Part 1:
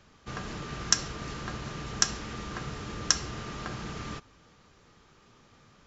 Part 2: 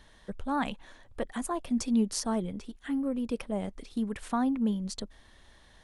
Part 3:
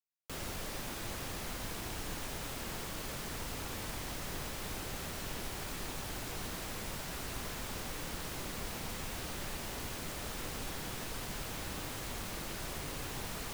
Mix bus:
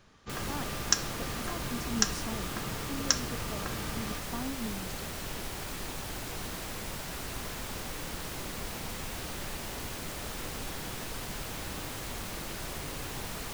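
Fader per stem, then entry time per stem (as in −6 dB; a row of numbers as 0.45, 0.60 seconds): −2.0, −10.5, +2.5 decibels; 0.00, 0.00, 0.00 seconds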